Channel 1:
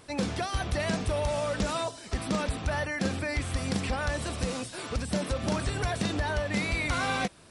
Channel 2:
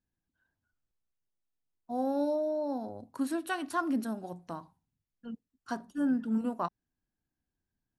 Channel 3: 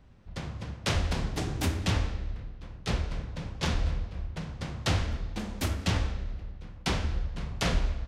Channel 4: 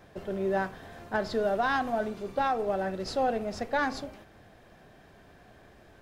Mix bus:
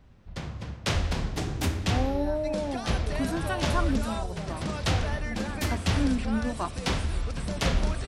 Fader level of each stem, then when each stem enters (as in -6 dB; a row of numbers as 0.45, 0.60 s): -5.5, +1.0, +1.0, -13.5 dB; 2.35, 0.00, 0.00, 1.70 s